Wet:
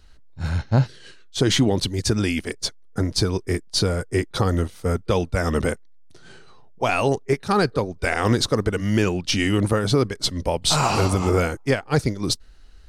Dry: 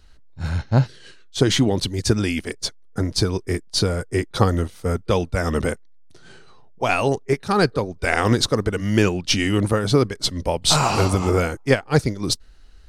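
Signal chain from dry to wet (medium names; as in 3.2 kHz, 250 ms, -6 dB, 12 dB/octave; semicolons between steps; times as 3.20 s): peak limiter -8.5 dBFS, peak gain reduction 6 dB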